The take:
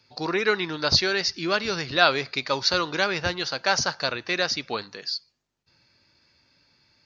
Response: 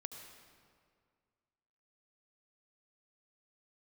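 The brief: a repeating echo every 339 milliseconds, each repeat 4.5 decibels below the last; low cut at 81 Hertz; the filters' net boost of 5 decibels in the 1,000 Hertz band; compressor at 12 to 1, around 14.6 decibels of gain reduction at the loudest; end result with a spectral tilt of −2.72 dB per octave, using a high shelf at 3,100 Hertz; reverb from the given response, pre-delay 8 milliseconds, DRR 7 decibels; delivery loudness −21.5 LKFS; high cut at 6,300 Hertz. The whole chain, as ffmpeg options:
-filter_complex "[0:a]highpass=81,lowpass=6300,equalizer=frequency=1000:width_type=o:gain=6.5,highshelf=frequency=3100:gain=3.5,acompressor=threshold=-24dB:ratio=12,aecho=1:1:339|678|1017|1356|1695|2034|2373|2712|3051:0.596|0.357|0.214|0.129|0.0772|0.0463|0.0278|0.0167|0.01,asplit=2[link_01][link_02];[1:a]atrim=start_sample=2205,adelay=8[link_03];[link_02][link_03]afir=irnorm=-1:irlink=0,volume=-4dB[link_04];[link_01][link_04]amix=inputs=2:normalize=0,volume=5.5dB"

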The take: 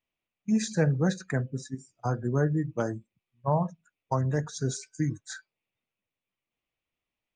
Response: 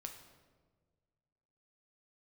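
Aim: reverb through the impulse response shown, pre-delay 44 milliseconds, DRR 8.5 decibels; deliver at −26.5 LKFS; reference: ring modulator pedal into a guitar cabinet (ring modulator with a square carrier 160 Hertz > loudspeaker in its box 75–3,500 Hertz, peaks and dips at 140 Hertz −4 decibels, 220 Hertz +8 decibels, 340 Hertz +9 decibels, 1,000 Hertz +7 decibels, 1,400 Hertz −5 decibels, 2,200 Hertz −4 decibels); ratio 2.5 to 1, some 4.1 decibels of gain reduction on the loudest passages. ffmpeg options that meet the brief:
-filter_complex "[0:a]acompressor=threshold=-26dB:ratio=2.5,asplit=2[link_01][link_02];[1:a]atrim=start_sample=2205,adelay=44[link_03];[link_02][link_03]afir=irnorm=-1:irlink=0,volume=-4.5dB[link_04];[link_01][link_04]amix=inputs=2:normalize=0,aeval=exprs='val(0)*sgn(sin(2*PI*160*n/s))':channel_layout=same,highpass=75,equalizer=frequency=140:width_type=q:width=4:gain=-4,equalizer=frequency=220:width_type=q:width=4:gain=8,equalizer=frequency=340:width_type=q:width=4:gain=9,equalizer=frequency=1000:width_type=q:width=4:gain=7,equalizer=frequency=1400:width_type=q:width=4:gain=-5,equalizer=frequency=2200:width_type=q:width=4:gain=-4,lowpass=frequency=3500:width=0.5412,lowpass=frequency=3500:width=1.3066,volume=2dB"

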